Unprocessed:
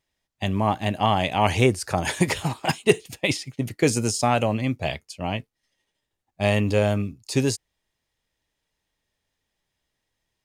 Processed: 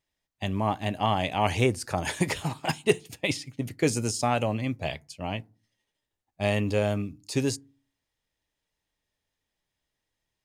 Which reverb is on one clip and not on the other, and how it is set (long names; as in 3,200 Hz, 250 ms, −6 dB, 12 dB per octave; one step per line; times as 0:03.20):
feedback delay network reverb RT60 0.36 s, low-frequency decay 1.5×, high-frequency decay 0.4×, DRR 20 dB
level −4.5 dB